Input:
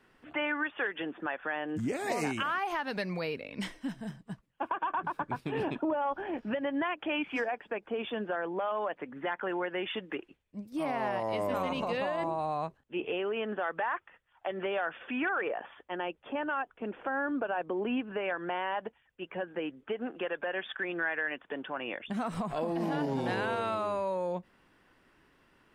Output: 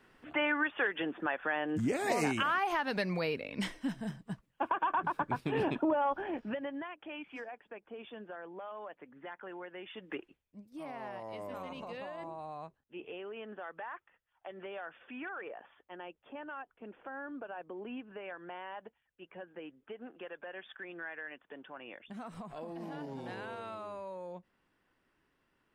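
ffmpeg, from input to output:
-af "volume=3.16,afade=t=out:st=6.02:d=0.86:silence=0.223872,afade=t=in:st=9.95:d=0.18:silence=0.354813,afade=t=out:st=10.13:d=0.5:silence=0.398107"

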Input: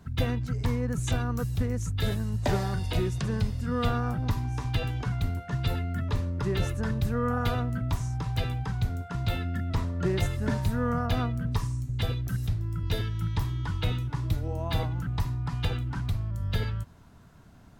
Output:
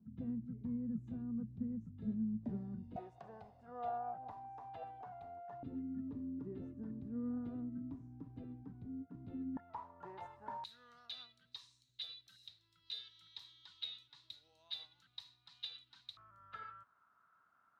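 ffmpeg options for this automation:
-af "asetnsamples=n=441:p=0,asendcmd='2.96 bandpass f 740;5.63 bandpass f 270;9.57 bandpass f 900;10.64 bandpass f 3900;16.17 bandpass f 1300',bandpass=f=220:t=q:w=9.4:csg=0"

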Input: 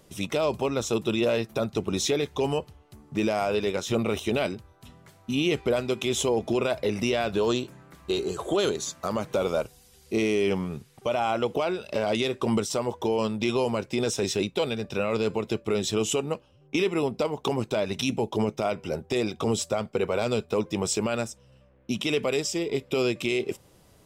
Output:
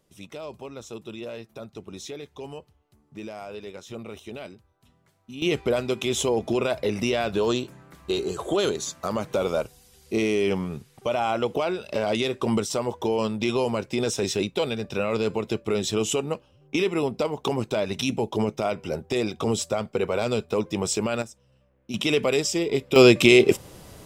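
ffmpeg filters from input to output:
-af "asetnsamples=n=441:p=0,asendcmd='5.42 volume volume 1dB;21.22 volume volume -6dB;21.94 volume volume 3.5dB;22.96 volume volume 12dB',volume=0.251"

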